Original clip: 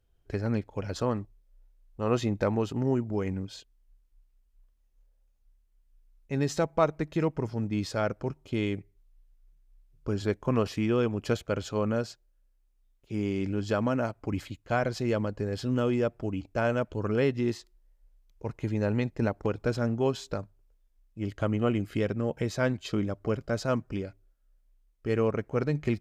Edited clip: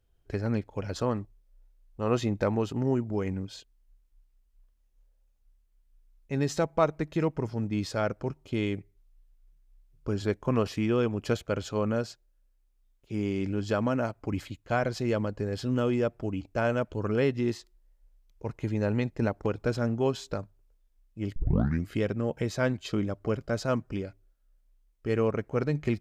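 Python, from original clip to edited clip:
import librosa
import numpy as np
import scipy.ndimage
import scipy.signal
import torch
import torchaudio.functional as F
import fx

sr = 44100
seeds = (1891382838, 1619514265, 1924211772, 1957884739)

y = fx.edit(x, sr, fx.tape_start(start_s=21.36, length_s=0.52), tone=tone)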